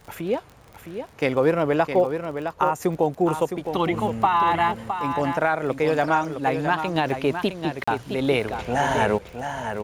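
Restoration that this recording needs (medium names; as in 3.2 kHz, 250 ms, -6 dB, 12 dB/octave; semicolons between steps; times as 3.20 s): de-click; interpolate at 7.84 s, 35 ms; inverse comb 663 ms -8 dB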